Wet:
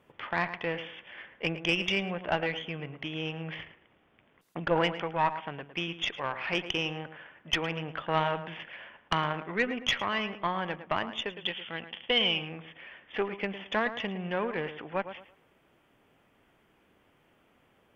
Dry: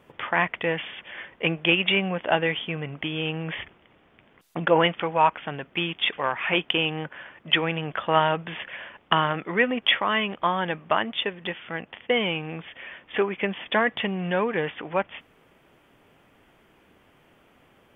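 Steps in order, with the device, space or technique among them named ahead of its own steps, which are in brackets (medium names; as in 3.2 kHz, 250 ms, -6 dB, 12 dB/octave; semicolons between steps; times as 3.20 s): rockabilly slapback (valve stage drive 9 dB, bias 0.6; tape echo 109 ms, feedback 30%, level -10 dB, low-pass 2.1 kHz); 11.36–12.49 s: peaking EQ 3.2 kHz +13 dB 0.56 oct; trim -4.5 dB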